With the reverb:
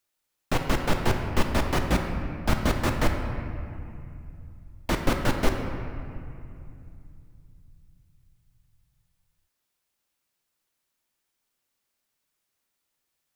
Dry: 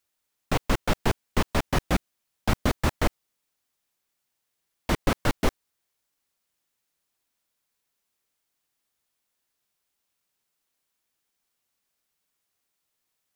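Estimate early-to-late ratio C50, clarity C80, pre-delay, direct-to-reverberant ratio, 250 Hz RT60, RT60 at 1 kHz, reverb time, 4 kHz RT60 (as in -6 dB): 5.0 dB, 6.0 dB, 3 ms, 3.0 dB, 3.7 s, 2.6 s, 2.6 s, 1.7 s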